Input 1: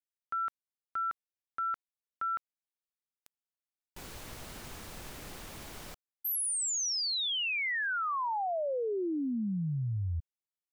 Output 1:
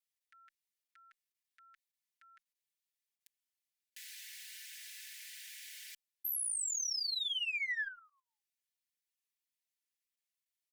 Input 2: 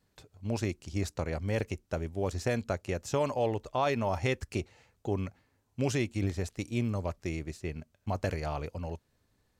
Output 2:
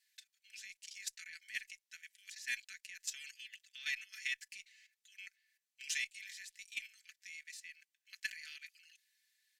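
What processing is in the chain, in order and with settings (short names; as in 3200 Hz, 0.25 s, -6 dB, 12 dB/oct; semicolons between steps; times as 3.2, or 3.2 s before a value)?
steep high-pass 1700 Hz 72 dB/oct; added harmonics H 3 -31 dB, 7 -40 dB, 8 -44 dB, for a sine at -21 dBFS; level quantiser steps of 14 dB; comb 4.6 ms, depth 79%; gain +3.5 dB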